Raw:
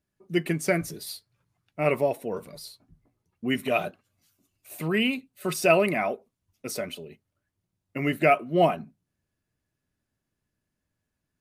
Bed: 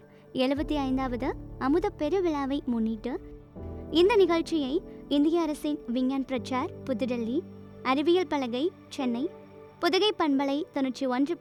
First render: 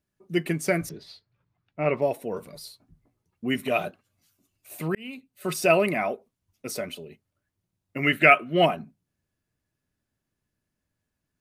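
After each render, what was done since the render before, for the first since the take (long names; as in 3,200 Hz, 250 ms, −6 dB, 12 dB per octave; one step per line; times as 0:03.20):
0:00.89–0:02.02: high-frequency loss of the air 200 metres
0:04.95–0:05.50: fade in
0:08.03–0:08.66: flat-topped bell 2,100 Hz +9 dB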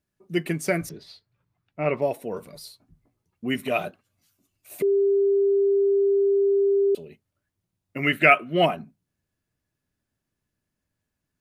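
0:04.82–0:06.95: beep over 397 Hz −17 dBFS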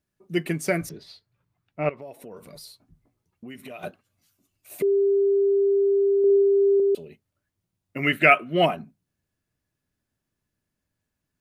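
0:01.89–0:03.83: downward compressor 4 to 1, threshold −39 dBFS
0:06.18–0:06.80: flutter between parallel walls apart 10.3 metres, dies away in 0.83 s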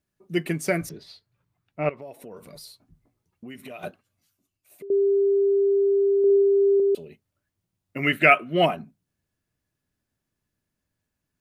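0:03.87–0:04.90: fade out, to −20 dB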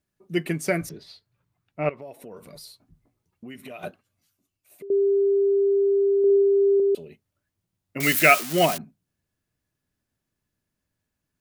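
0:08.00–0:08.78: spike at every zero crossing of −17 dBFS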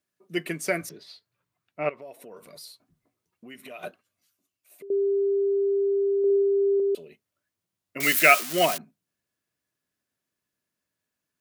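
high-pass filter 430 Hz 6 dB per octave
notch filter 830 Hz, Q 12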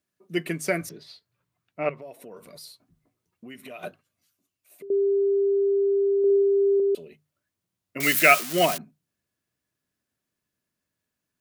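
low-shelf EQ 210 Hz +7.5 dB
mains-hum notches 50/100/150 Hz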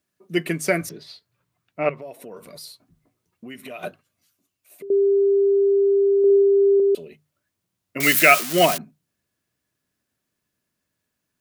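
level +4.5 dB
brickwall limiter −2 dBFS, peak gain reduction 3 dB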